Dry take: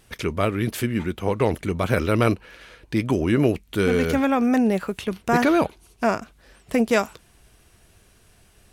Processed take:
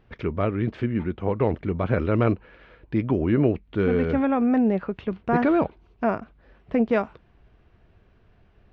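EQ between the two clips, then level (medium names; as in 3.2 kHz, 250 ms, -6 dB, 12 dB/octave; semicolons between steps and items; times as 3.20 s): distance through air 200 m; tape spacing loss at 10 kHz 25 dB; 0.0 dB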